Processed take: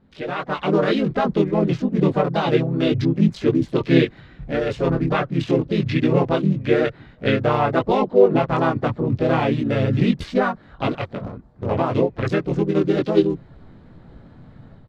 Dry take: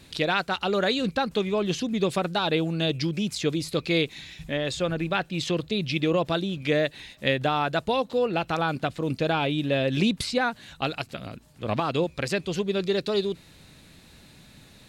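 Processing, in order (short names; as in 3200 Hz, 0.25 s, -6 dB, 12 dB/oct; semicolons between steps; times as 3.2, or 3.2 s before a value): Wiener smoothing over 15 samples; LPF 1700 Hz 6 dB/oct; AGC gain up to 12 dB; chorus voices 6, 0.26 Hz, delay 20 ms, depth 4.8 ms; harmoniser -4 st -1 dB, +4 st -15 dB; gain -2.5 dB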